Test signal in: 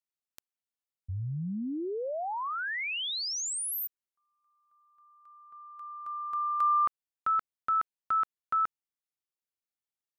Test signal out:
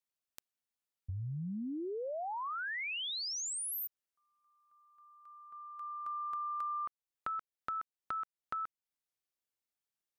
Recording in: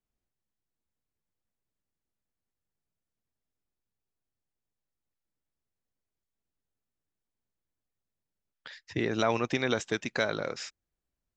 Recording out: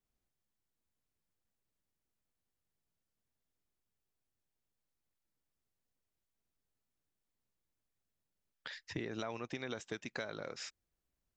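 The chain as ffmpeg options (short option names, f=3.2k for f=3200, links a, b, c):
-af "acompressor=threshold=-37dB:ratio=6:attack=15:release=348:knee=1:detection=rms"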